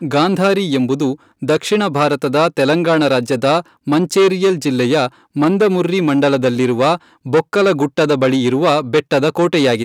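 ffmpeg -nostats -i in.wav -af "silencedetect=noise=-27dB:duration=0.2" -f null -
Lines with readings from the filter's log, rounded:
silence_start: 1.15
silence_end: 1.42 | silence_duration: 0.28
silence_start: 3.61
silence_end: 3.87 | silence_duration: 0.26
silence_start: 5.08
silence_end: 5.36 | silence_duration: 0.28
silence_start: 6.97
silence_end: 7.26 | silence_duration: 0.29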